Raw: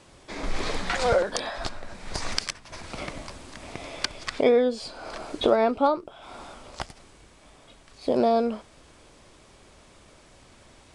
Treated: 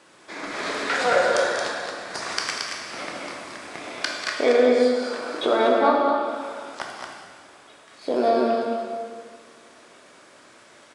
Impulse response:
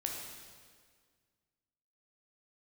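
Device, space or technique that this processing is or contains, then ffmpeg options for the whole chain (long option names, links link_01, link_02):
stadium PA: -filter_complex "[0:a]highpass=250,equalizer=frequency=1500:width_type=o:width=0.82:gain=6.5,aecho=1:1:192.4|224.5:0.282|0.562[link_01];[1:a]atrim=start_sample=2205[link_02];[link_01][link_02]afir=irnorm=-1:irlink=0"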